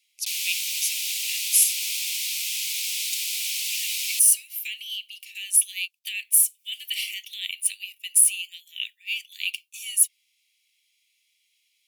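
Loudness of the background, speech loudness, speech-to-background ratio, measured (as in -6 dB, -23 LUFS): -25.5 LUFS, -23.0 LUFS, 2.5 dB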